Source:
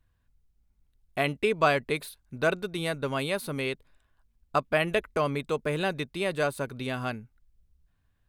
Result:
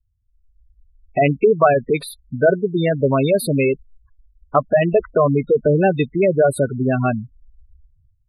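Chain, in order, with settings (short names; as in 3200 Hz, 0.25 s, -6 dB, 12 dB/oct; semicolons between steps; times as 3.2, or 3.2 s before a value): spectral gate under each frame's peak -10 dB strong; dynamic EQ 1600 Hz, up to -6 dB, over -40 dBFS, Q 0.9; AGC gain up to 16 dB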